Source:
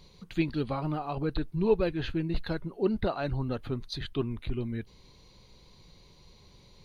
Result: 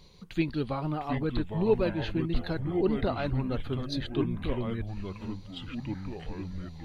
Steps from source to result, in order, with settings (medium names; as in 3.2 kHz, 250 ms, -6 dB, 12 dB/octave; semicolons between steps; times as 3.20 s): ever faster or slower copies 623 ms, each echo -4 st, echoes 3, each echo -6 dB